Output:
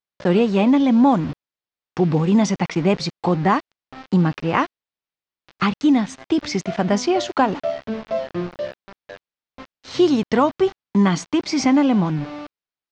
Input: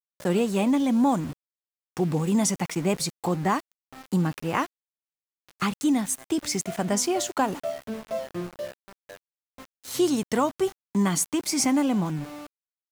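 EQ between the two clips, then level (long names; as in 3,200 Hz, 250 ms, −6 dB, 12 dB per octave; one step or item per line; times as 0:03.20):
low-pass filter 5,400 Hz 24 dB per octave
high-frequency loss of the air 65 metres
+7.0 dB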